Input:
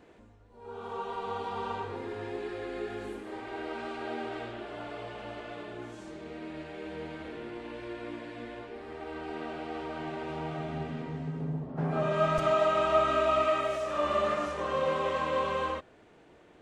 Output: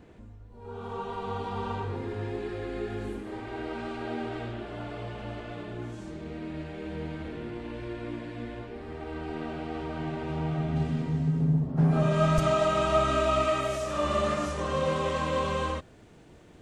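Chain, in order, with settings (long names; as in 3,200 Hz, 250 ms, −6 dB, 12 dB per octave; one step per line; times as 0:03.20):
bass and treble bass +12 dB, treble +1 dB, from 0:10.75 treble +10 dB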